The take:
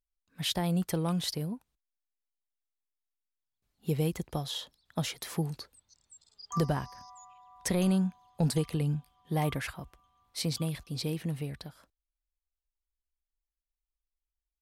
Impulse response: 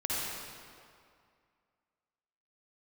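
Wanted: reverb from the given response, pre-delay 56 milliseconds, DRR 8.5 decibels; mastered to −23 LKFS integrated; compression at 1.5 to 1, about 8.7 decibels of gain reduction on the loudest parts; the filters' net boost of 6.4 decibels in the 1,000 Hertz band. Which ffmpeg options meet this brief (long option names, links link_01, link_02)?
-filter_complex "[0:a]equalizer=frequency=1000:width_type=o:gain=8.5,acompressor=threshold=-48dB:ratio=1.5,asplit=2[link_01][link_02];[1:a]atrim=start_sample=2205,adelay=56[link_03];[link_02][link_03]afir=irnorm=-1:irlink=0,volume=-15.5dB[link_04];[link_01][link_04]amix=inputs=2:normalize=0,volume=16.5dB"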